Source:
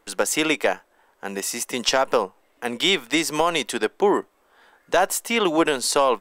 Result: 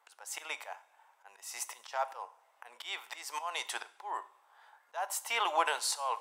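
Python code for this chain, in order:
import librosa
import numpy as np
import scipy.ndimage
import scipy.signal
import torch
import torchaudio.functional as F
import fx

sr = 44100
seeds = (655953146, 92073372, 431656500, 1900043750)

y = fx.auto_swell(x, sr, attack_ms=285.0)
y = fx.ladder_highpass(y, sr, hz=710.0, resonance_pct=50)
y = fx.rev_double_slope(y, sr, seeds[0], early_s=0.51, late_s=2.6, knee_db=-22, drr_db=12.5)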